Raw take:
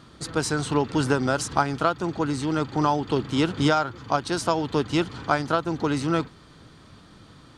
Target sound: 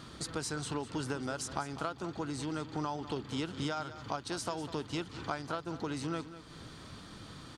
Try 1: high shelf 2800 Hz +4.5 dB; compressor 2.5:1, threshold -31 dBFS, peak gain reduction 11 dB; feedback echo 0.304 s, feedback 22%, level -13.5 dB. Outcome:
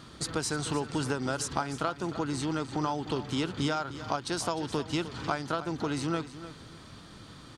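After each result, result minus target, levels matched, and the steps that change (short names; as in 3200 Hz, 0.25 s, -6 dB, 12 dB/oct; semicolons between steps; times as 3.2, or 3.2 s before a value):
echo 0.104 s late; compressor: peak gain reduction -5.5 dB
change: feedback echo 0.2 s, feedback 22%, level -13.5 dB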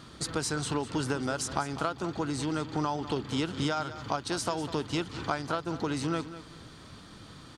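compressor: peak gain reduction -5.5 dB
change: compressor 2.5:1, threshold -40.5 dBFS, peak gain reduction 17 dB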